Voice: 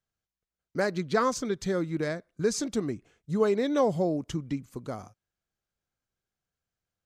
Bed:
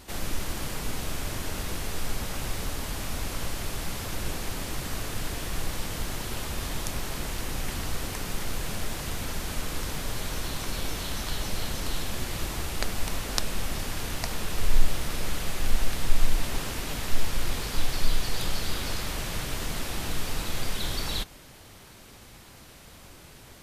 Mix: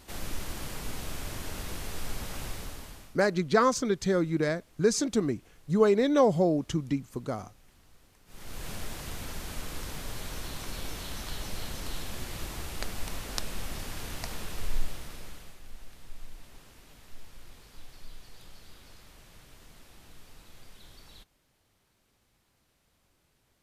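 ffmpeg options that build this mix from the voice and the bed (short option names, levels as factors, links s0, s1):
-filter_complex "[0:a]adelay=2400,volume=1.33[s0];[1:a]volume=7.5,afade=t=out:st=2.42:d=0.76:silence=0.0668344,afade=t=in:st=8.26:d=0.43:silence=0.0749894,afade=t=out:st=14.33:d=1.27:silence=0.158489[s1];[s0][s1]amix=inputs=2:normalize=0"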